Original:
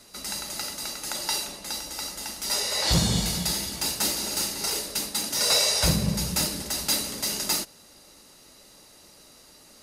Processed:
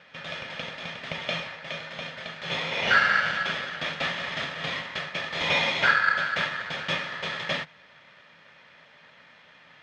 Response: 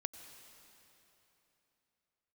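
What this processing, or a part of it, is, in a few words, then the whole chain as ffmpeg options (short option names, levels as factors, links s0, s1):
ring modulator pedal into a guitar cabinet: -af "aeval=exprs='val(0)*sgn(sin(2*PI*1500*n/s))':c=same,highpass=87,equalizer=f=160:t=q:w=4:g=9,equalizer=f=350:t=q:w=4:g=-8,equalizer=f=560:t=q:w=4:g=6,equalizer=f=1100:t=q:w=4:g=-3,equalizer=f=1800:t=q:w=4:g=5,lowpass=f=3400:w=0.5412,lowpass=f=3400:w=1.3066,volume=1.19"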